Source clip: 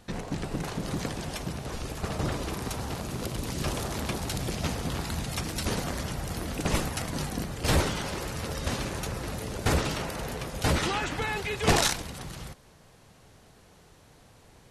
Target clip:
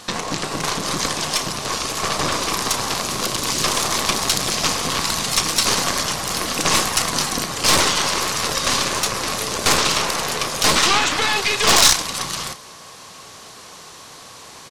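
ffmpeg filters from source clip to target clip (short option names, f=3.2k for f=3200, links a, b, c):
-filter_complex "[0:a]asplit=2[a][b];[b]adelay=32,volume=-12dB[c];[a][c]amix=inputs=2:normalize=0,asplit=2[d][e];[e]acompressor=threshold=-39dB:ratio=6,volume=2.5dB[f];[d][f]amix=inputs=2:normalize=0,highpass=f=350:p=1,equalizer=f=1.1k:t=o:w=0.27:g=10.5,aeval=exprs='0.376*(cos(1*acos(clip(val(0)/0.376,-1,1)))-cos(1*PI/2))+0.133*(cos(5*acos(clip(val(0)/0.376,-1,1)))-cos(5*PI/2))+0.119*(cos(8*acos(clip(val(0)/0.376,-1,1)))-cos(8*PI/2))':c=same,equalizer=f=5.5k:t=o:w=2:g=9.5,volume=-2.5dB"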